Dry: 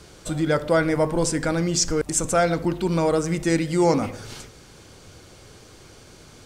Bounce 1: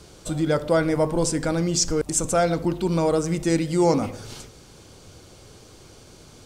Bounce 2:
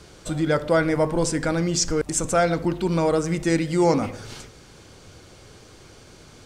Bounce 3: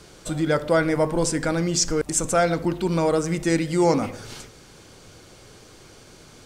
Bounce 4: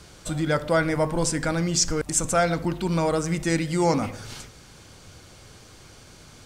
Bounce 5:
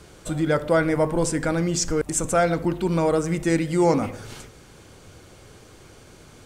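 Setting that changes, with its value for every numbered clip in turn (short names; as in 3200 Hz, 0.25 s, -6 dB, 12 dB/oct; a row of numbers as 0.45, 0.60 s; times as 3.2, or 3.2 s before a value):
bell, frequency: 1800, 15000, 73, 400, 4900 Hz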